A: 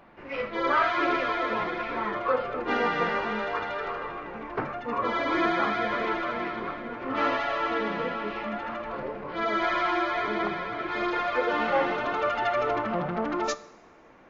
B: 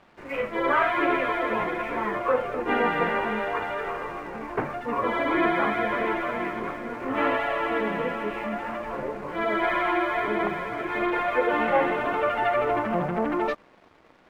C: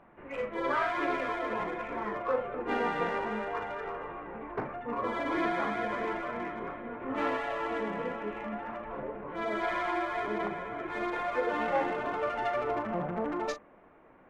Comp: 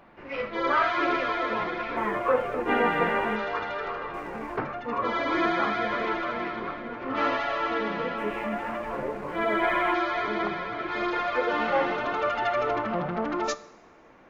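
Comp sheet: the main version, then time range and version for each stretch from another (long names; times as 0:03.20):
A
0:01.97–0:03.36: punch in from B
0:04.14–0:04.57: punch in from B
0:08.18–0:09.94: punch in from B
not used: C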